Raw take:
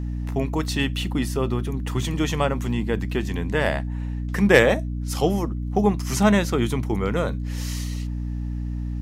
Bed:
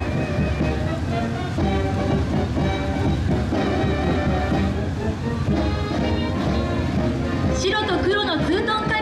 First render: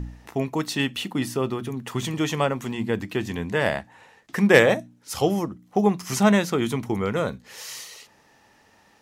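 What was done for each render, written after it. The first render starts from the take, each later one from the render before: de-hum 60 Hz, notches 5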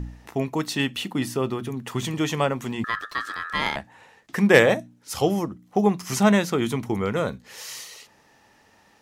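2.84–3.76 ring modulator 1500 Hz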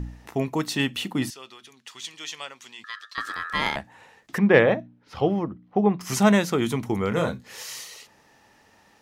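1.3–3.18 band-pass 4500 Hz, Q 1.2; 4.38–6.01 air absorption 330 m; 7.09–7.63 doubler 24 ms -5 dB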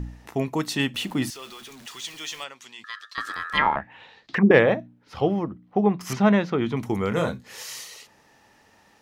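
0.94–2.44 zero-crossing step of -41.5 dBFS; 3.57–4.51 envelope low-pass 380–4600 Hz down, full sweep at -17 dBFS; 6.13–6.77 air absorption 250 m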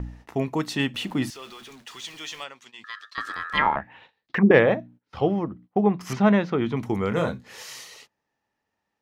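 gate -46 dBFS, range -22 dB; high shelf 5600 Hz -7.5 dB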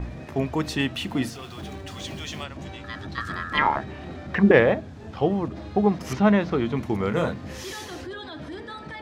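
add bed -16.5 dB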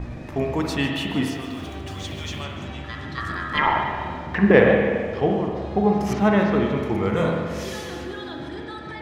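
split-band echo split 560 Hz, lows 0.327 s, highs 0.15 s, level -14 dB; spring tank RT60 1.6 s, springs 42/54 ms, chirp 75 ms, DRR 1.5 dB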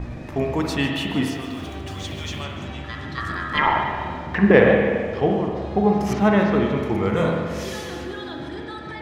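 gain +1 dB; limiter -1 dBFS, peak gain reduction 1 dB

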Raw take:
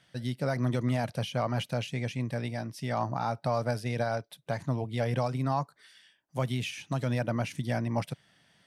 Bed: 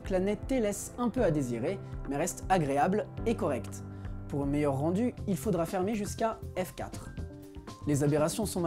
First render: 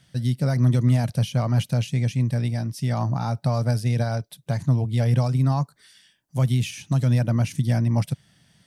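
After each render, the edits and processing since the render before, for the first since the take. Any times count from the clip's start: tone controls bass +13 dB, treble +9 dB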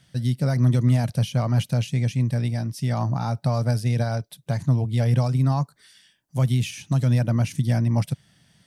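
nothing audible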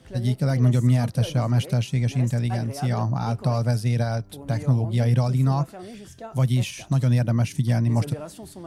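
add bed -8.5 dB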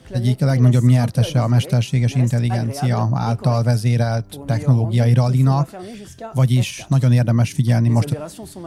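gain +5.5 dB

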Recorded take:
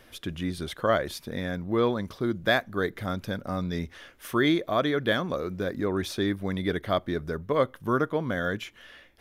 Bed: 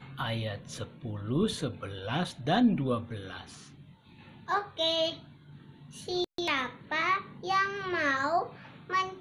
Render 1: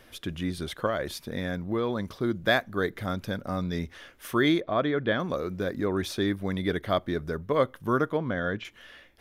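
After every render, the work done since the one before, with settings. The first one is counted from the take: 0.86–2.08 compressor, threshold -23 dBFS; 4.6–5.2 air absorption 240 m; 8.17–8.65 air absorption 170 m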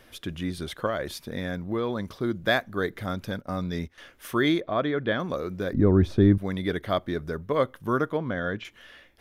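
3.31–3.98 gate -39 dBFS, range -12 dB; 5.73–6.38 tilt -4.5 dB/oct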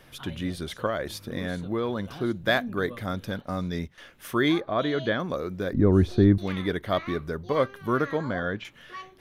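add bed -12 dB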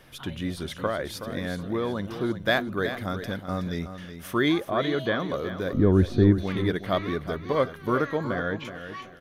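feedback echo 0.373 s, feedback 30%, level -10.5 dB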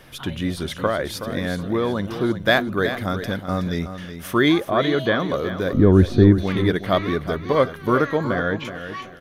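gain +6 dB; limiter -2 dBFS, peak gain reduction 1.5 dB

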